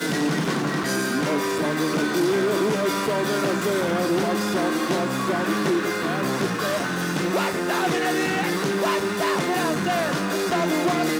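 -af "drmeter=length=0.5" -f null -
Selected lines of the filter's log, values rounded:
Channel 1: DR: 7.7
Overall DR: 7.7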